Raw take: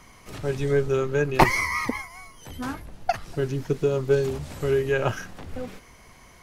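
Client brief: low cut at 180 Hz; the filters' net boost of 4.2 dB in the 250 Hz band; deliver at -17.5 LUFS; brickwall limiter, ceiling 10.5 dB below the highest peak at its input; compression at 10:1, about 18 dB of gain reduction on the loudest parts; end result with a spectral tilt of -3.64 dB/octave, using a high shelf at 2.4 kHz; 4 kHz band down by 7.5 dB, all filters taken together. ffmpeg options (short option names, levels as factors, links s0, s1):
-af "highpass=180,equalizer=f=250:t=o:g=7,highshelf=f=2400:g=-3.5,equalizer=f=4000:t=o:g=-7,acompressor=threshold=0.0316:ratio=10,volume=10.6,alimiter=limit=0.473:level=0:latency=1"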